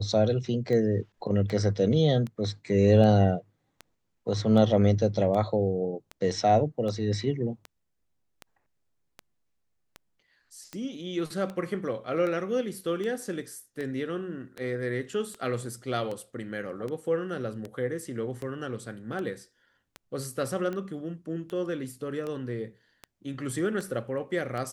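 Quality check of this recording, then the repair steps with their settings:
tick 78 rpm -23 dBFS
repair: de-click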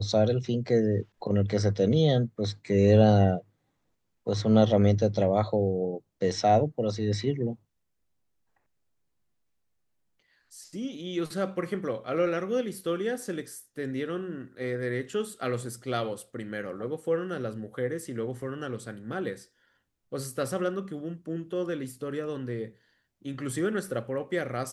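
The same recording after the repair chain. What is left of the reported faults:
nothing left

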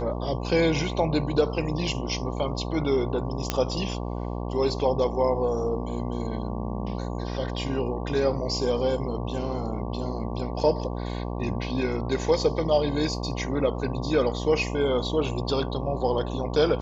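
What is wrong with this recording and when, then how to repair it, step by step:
buzz 60 Hz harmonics 19 -31 dBFS
3.50 s: pop -8 dBFS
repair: de-click; de-hum 60 Hz, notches 19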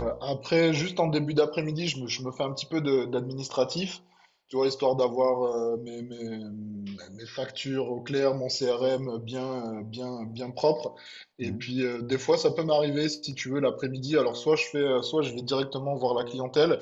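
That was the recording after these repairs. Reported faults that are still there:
nothing left

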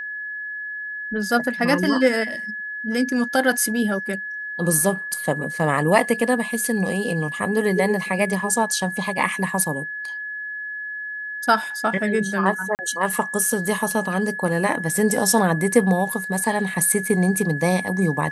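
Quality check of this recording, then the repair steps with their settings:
whine 1.7 kHz -28 dBFS
12.75–12.79 s: dropout 39 ms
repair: band-stop 1.7 kHz, Q 30; interpolate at 12.75 s, 39 ms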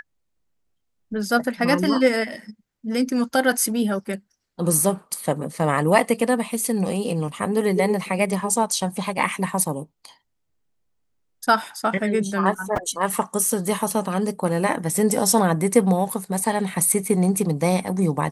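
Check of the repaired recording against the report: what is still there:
nothing left

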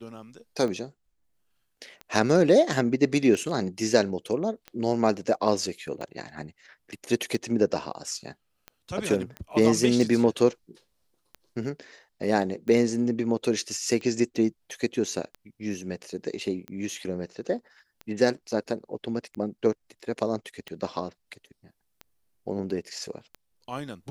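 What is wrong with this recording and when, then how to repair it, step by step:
tick 45 rpm -24 dBFS
9.37 s: pop -23 dBFS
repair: de-click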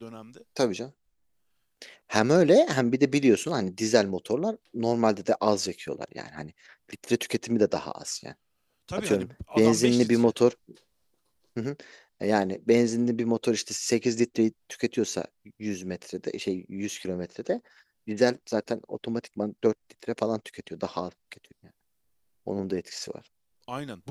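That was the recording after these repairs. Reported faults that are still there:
nothing left

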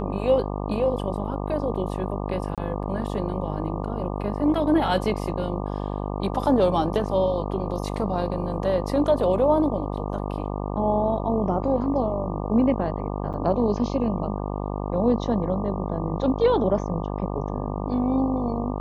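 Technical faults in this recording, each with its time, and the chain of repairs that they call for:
buzz 50 Hz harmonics 24 -29 dBFS
2.55–2.58 s: dropout 27 ms
13.33–13.34 s: dropout 7.6 ms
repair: de-hum 50 Hz, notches 24; interpolate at 2.55 s, 27 ms; interpolate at 13.33 s, 7.6 ms

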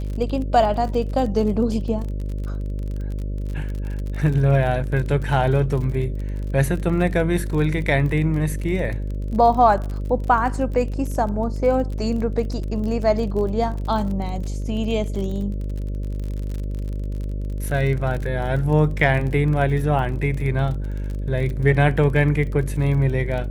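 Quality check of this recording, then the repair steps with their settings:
buzz 50 Hz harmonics 12 -26 dBFS
crackle 37 per s -29 dBFS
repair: de-click; de-hum 50 Hz, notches 12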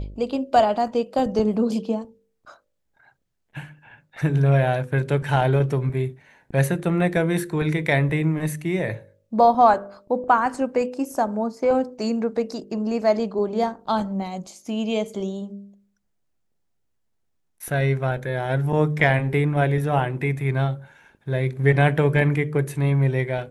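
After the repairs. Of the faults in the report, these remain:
nothing left

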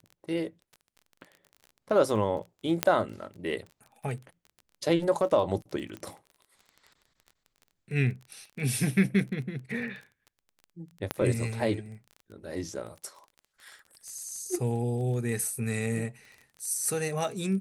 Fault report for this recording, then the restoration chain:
crackle 23 per s -39 dBFS
2.83 s: pop -6 dBFS
5.97 s: pop -26 dBFS
11.11 s: pop -13 dBFS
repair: de-click

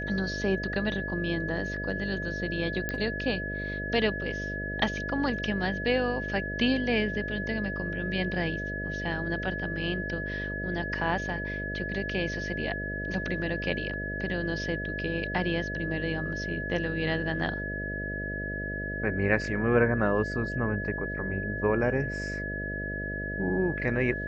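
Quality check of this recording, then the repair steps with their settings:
buzz 50 Hz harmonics 13 -36 dBFS
whine 1.7 kHz -34 dBFS
2.89 s: pop -16 dBFS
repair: de-click; de-hum 50 Hz, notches 13; band-stop 1.7 kHz, Q 30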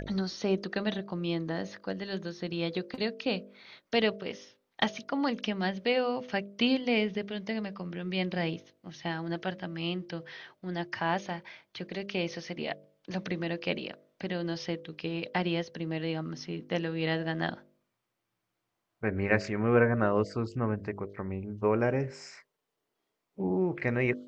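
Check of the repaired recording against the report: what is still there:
nothing left

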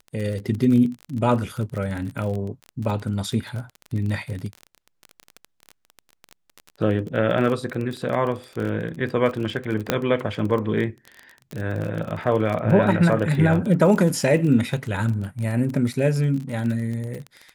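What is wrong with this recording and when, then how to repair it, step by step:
crackle 28 per s -27 dBFS
9.90 s: pop -4 dBFS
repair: de-click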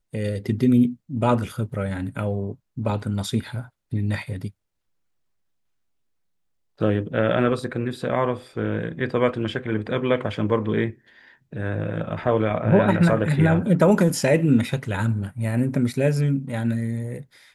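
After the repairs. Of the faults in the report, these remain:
nothing left

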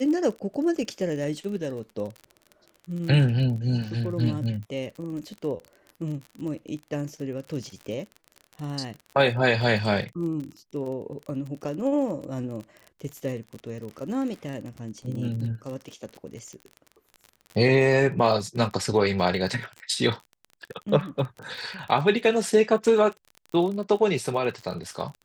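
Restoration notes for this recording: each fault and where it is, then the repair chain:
crackle 38 per s -33 dBFS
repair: de-click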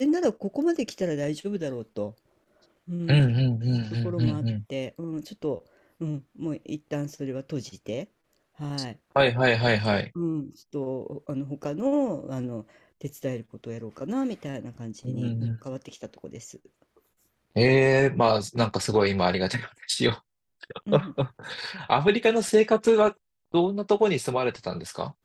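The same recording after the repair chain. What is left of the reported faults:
nothing left

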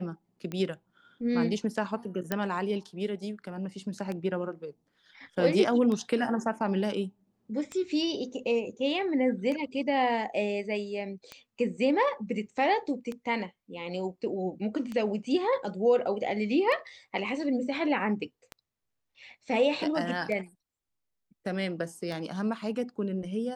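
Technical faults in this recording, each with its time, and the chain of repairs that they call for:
tick 33 1/3 rpm -22 dBFS
2.32 s: pop -14 dBFS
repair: de-click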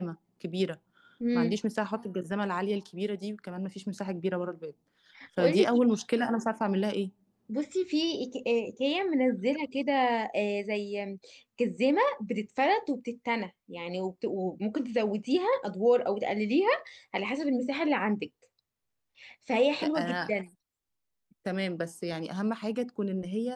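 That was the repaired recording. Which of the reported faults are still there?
nothing left

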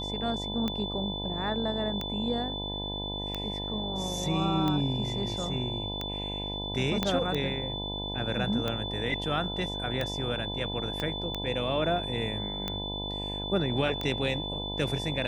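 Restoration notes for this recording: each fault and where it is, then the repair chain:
buzz 50 Hz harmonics 20 -37 dBFS
tick 45 rpm -17 dBFS
whine 3.5 kHz -35 dBFS
7.03 s: pop -12 dBFS
11.00 s: pop -18 dBFS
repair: de-click; de-hum 50 Hz, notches 20; band-stop 3.5 kHz, Q 30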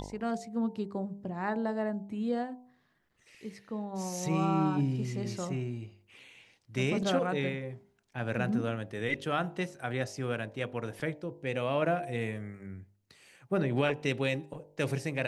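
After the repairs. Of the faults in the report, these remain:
7.03 s: pop
11.00 s: pop

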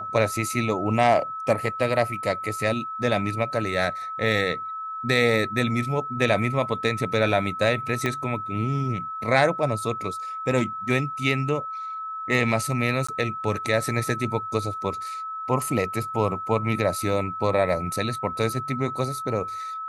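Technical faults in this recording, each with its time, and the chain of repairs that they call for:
whine 1.3 kHz -30 dBFS
8.06 s: pop -12 dBFS
13.07–13.09 s: dropout 15 ms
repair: de-click; band-stop 1.3 kHz, Q 30; interpolate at 13.07 s, 15 ms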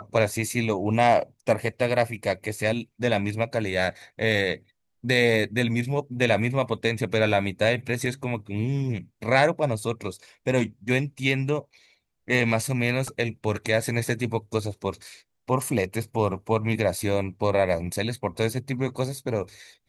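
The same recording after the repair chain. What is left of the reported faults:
8.06 s: pop

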